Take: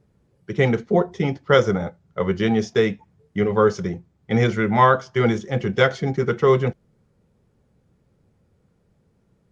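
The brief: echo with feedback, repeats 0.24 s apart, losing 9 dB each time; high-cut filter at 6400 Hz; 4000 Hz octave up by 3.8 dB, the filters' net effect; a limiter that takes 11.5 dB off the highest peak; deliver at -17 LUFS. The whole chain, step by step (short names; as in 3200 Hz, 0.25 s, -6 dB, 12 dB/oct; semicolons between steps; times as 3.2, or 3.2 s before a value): LPF 6400 Hz; bell 4000 Hz +5.5 dB; limiter -13.5 dBFS; feedback echo 0.24 s, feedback 35%, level -9 dB; gain +7.5 dB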